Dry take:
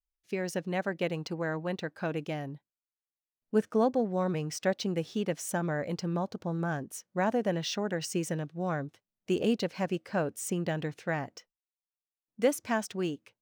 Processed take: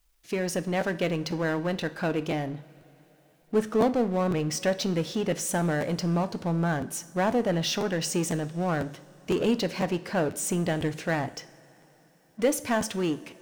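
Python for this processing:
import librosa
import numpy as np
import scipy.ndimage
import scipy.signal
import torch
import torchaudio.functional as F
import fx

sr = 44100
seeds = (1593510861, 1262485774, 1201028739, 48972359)

y = fx.power_curve(x, sr, exponent=0.7)
y = fx.rev_double_slope(y, sr, seeds[0], early_s=0.52, late_s=4.3, knee_db=-18, drr_db=11.5)
y = fx.buffer_crackle(y, sr, first_s=0.8, period_s=0.5, block=512, kind='repeat')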